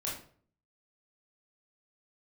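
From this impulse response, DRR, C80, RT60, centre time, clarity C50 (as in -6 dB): -5.5 dB, 9.5 dB, 0.50 s, 38 ms, 4.5 dB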